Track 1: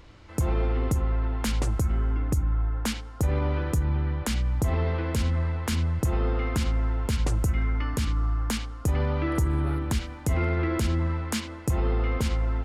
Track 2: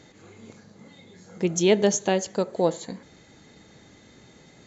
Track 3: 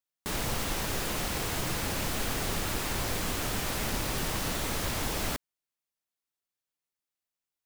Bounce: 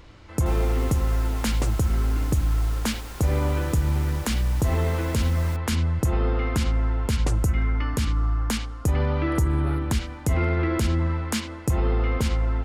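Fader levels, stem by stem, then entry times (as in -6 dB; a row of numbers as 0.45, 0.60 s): +2.5 dB, off, -9.5 dB; 0.00 s, off, 0.20 s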